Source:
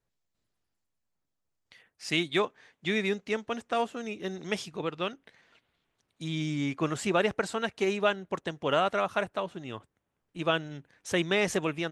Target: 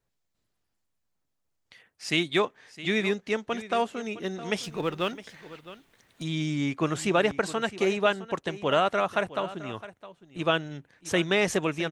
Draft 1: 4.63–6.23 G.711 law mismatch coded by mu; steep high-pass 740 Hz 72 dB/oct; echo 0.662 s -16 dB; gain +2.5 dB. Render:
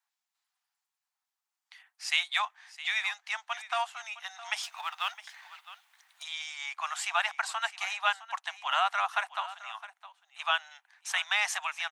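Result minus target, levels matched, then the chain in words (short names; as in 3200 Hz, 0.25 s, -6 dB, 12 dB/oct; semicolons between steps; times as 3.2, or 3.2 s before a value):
1000 Hz band +3.0 dB
4.63–6.23 G.711 law mismatch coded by mu; echo 0.662 s -16 dB; gain +2.5 dB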